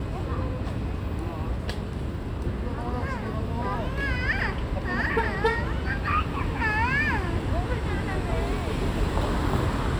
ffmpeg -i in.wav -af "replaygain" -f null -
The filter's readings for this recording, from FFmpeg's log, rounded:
track_gain = +9.6 dB
track_peak = 0.239